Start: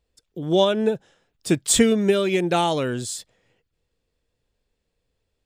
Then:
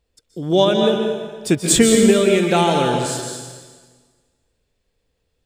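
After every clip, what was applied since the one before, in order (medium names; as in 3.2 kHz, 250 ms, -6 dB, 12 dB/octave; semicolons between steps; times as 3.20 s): plate-style reverb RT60 1.5 s, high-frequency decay 0.95×, pre-delay 115 ms, DRR 2.5 dB; trim +3 dB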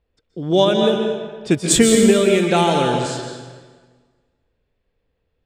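level-controlled noise filter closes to 2.6 kHz, open at -11 dBFS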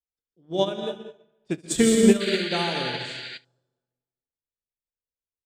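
painted sound noise, 2.20–3.38 s, 1.4–4.8 kHz -19 dBFS; on a send: early reflections 31 ms -10.5 dB, 71 ms -10.5 dB; on the sum: upward expansion 2.5:1, over -28 dBFS; trim -3.5 dB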